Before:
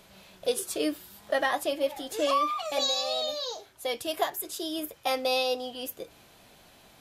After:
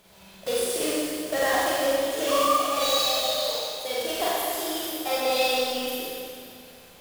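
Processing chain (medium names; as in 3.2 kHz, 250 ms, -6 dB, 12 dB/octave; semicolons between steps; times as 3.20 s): block-companded coder 3-bit; Schroeder reverb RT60 2.3 s, combs from 32 ms, DRR -7.5 dB; trim -4 dB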